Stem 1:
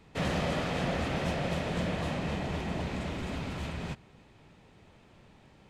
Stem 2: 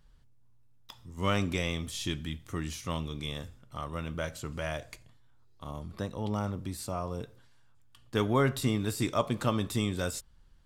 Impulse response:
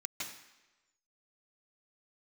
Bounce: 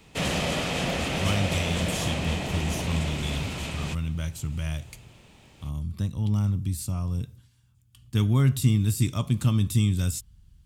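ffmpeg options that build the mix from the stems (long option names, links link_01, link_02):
-filter_complex "[0:a]volume=2.5dB[link_01];[1:a]highpass=61,asubboost=boost=12:cutoff=150,volume=-5dB[link_02];[link_01][link_02]amix=inputs=2:normalize=0,aexciter=amount=1.8:drive=7.2:freq=2400"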